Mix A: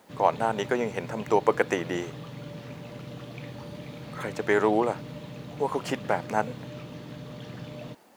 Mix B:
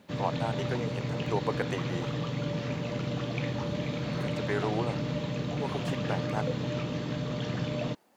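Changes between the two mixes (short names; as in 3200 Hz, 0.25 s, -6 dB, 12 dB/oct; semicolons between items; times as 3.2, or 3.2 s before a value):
speech -9.0 dB; background +8.0 dB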